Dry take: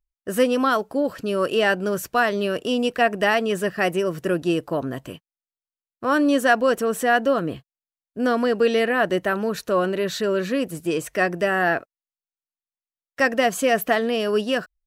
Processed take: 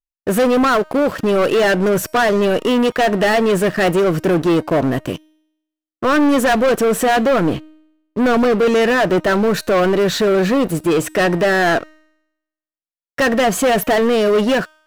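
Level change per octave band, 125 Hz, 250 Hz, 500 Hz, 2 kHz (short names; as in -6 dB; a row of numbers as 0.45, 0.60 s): +10.0, +7.5, +6.5, +4.0 dB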